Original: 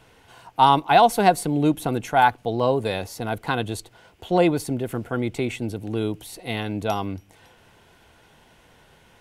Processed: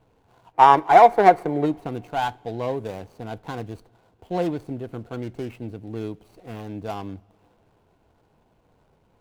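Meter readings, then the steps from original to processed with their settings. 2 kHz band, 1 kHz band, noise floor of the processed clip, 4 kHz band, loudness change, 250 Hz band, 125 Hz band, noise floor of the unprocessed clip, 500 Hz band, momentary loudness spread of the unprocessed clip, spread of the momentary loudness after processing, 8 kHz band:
-3.0 dB, +2.0 dB, -63 dBFS, -8.5 dB, +2.0 dB, -4.5 dB, -5.5 dB, -56 dBFS, 0.0 dB, 14 LU, 22 LU, under -10 dB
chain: median filter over 25 samples; spectral gain 0.54–1.65, 320–2400 Hz +10 dB; two-slope reverb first 0.25 s, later 3 s, from -21 dB, DRR 17.5 dB; gain -5.5 dB

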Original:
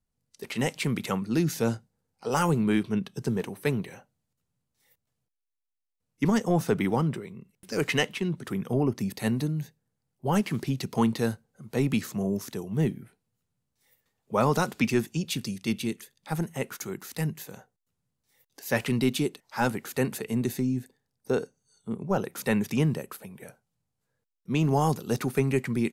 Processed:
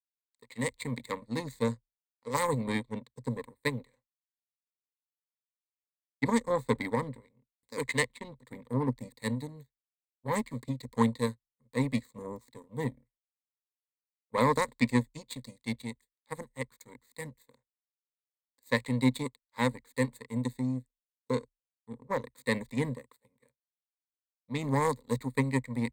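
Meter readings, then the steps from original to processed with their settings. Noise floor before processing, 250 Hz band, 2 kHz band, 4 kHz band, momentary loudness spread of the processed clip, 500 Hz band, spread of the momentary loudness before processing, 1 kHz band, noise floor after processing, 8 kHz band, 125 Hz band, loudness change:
-82 dBFS, -5.5 dB, -2.5 dB, -6.0 dB, 16 LU, -4.5 dB, 12 LU, -2.5 dB, under -85 dBFS, -5.5 dB, -6.5 dB, -4.0 dB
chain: power-law curve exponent 2; ripple EQ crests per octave 1, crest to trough 17 dB

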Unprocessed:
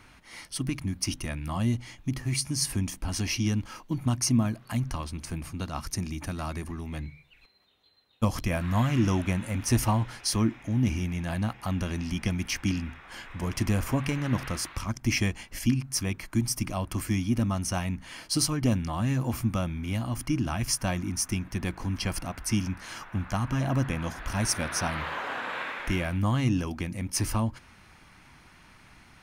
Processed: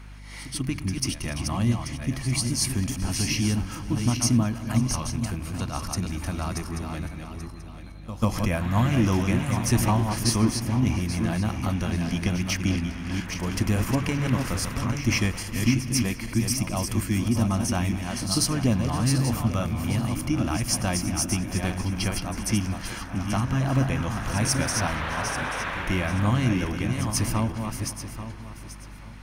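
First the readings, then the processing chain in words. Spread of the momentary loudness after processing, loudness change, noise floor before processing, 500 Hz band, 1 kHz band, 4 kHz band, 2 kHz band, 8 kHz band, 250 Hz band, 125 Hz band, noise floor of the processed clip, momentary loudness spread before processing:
9 LU, +3.5 dB, -55 dBFS, +3.5 dB, +3.5 dB, +3.5 dB, +3.5 dB, +3.5 dB, +3.5 dB, +3.5 dB, -40 dBFS, 9 LU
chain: regenerating reverse delay 0.417 s, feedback 48%, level -5.5 dB; on a send: tape echo 0.203 s, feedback 86%, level -19 dB, low-pass 4000 Hz; on the sum: hum 50 Hz, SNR 18 dB; pre-echo 0.142 s -13.5 dB; gain +2 dB

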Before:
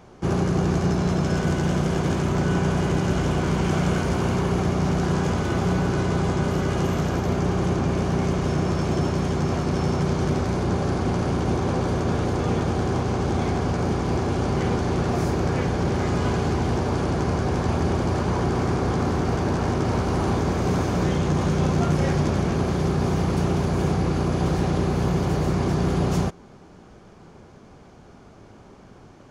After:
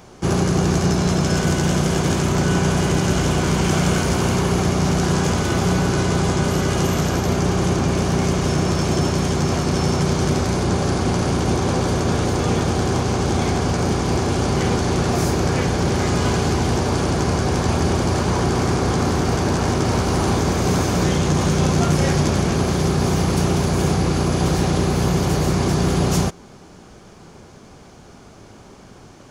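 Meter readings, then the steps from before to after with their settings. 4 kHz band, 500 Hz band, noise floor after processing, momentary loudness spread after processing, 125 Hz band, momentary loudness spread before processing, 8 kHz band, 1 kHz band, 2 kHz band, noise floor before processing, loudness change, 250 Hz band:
+9.5 dB, +3.5 dB, -44 dBFS, 2 LU, +3.5 dB, 2 LU, +12.0 dB, +4.0 dB, +5.5 dB, -48 dBFS, +4.0 dB, +3.5 dB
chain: high shelf 3700 Hz +11 dB; gain +3.5 dB

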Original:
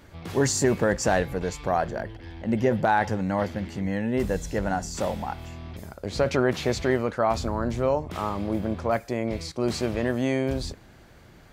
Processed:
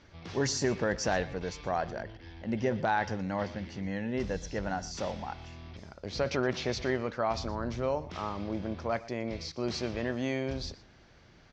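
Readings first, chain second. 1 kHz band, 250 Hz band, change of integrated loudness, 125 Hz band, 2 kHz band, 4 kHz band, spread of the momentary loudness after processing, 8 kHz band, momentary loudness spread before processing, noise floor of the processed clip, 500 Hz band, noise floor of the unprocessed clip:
-7.0 dB, -7.5 dB, -7.0 dB, -7.5 dB, -5.0 dB, -2.5 dB, 11 LU, -7.5 dB, 11 LU, -57 dBFS, -7.0 dB, -51 dBFS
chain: Chebyshev low-pass 5800 Hz, order 4; high shelf 3600 Hz +7.5 dB; echo 0.119 s -19 dB; gain -6.5 dB

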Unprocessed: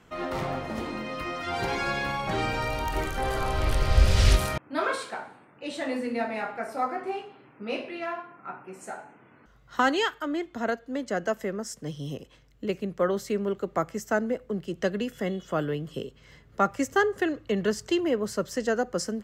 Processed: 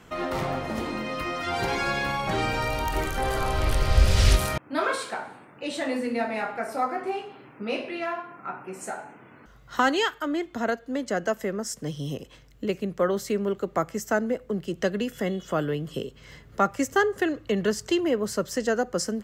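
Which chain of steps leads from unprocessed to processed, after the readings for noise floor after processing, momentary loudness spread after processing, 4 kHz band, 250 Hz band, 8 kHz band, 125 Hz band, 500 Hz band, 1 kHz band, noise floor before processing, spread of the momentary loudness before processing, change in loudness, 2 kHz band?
-52 dBFS, 11 LU, +2.0 dB, +2.0 dB, +3.5 dB, +1.0 dB, +1.5 dB, +1.5 dB, -57 dBFS, 13 LU, +1.5 dB, +1.5 dB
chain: high shelf 7400 Hz +4 dB; in parallel at -1 dB: compressor, threshold -38 dBFS, peak gain reduction 23 dB

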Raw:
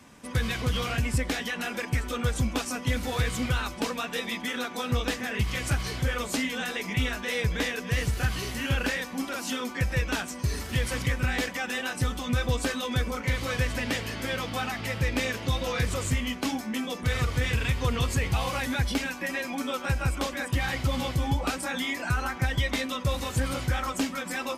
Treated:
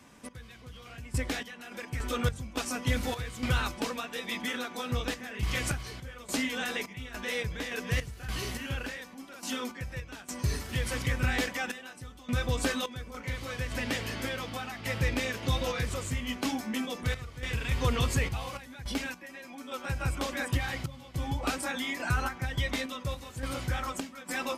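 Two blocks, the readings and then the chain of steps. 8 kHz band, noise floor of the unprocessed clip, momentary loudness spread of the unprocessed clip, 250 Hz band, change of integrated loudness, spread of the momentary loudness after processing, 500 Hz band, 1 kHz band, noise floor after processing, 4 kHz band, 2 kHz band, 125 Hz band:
-3.5 dB, -39 dBFS, 4 LU, -4.5 dB, -4.0 dB, 11 LU, -4.0 dB, -4.0 dB, -49 dBFS, -4.0 dB, -4.5 dB, -5.0 dB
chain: random-step tremolo, depth 90%; de-hum 45.58 Hz, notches 5

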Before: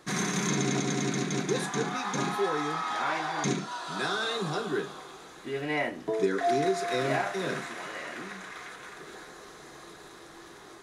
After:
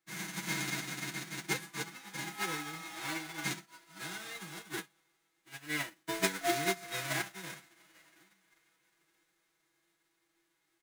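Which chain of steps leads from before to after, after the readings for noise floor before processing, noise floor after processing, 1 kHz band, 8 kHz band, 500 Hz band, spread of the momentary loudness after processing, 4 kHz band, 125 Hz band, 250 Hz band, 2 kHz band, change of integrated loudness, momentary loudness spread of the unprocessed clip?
-49 dBFS, -78 dBFS, -11.0 dB, -4.5 dB, -13.0 dB, 13 LU, -4.5 dB, -10.5 dB, -11.0 dB, -4.5 dB, -7.0 dB, 19 LU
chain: spectral whitening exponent 0.3; bell 1800 Hz +6 dB 1.3 oct; comb 6.1 ms, depth 98%; small resonant body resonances 330/2100 Hz, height 7 dB; short-mantissa float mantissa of 2-bit; upward expander 2.5:1, over -36 dBFS; gain -7.5 dB

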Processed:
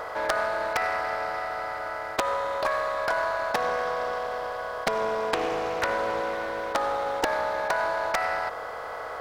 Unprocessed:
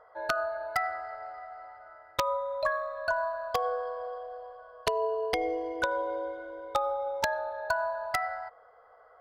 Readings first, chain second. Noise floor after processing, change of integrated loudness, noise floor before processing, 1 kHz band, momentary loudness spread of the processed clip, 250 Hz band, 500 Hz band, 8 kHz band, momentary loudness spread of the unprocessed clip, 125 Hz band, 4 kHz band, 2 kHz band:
-36 dBFS, +4.0 dB, -57 dBFS, +5.0 dB, 5 LU, +5.0 dB, +4.0 dB, +5.0 dB, 12 LU, +6.0 dB, +5.0 dB, +5.5 dB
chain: per-bin compression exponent 0.4; Doppler distortion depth 0.64 ms; gain -1 dB

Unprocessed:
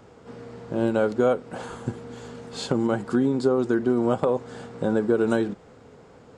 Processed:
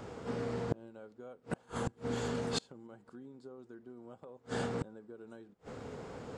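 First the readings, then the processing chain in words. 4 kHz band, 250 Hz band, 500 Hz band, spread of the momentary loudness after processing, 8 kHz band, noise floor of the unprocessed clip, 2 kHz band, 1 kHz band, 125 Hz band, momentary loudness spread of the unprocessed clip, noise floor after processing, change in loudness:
-5.5 dB, -17.5 dB, -16.5 dB, 16 LU, -4.5 dB, -50 dBFS, -12.0 dB, -12.5 dB, -9.5 dB, 18 LU, -67 dBFS, -15.5 dB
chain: flipped gate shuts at -26 dBFS, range -33 dB; gain +4 dB

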